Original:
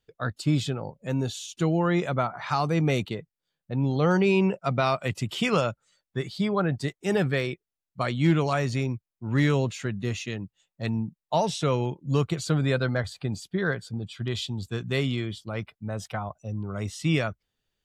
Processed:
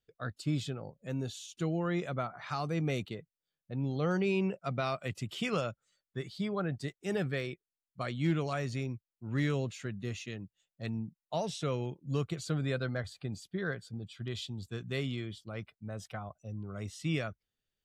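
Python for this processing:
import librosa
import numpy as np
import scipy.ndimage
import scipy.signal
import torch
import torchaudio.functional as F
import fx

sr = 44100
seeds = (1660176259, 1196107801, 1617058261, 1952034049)

y = fx.peak_eq(x, sr, hz=920.0, db=-6.5, octaves=0.32)
y = y * 10.0 ** (-8.5 / 20.0)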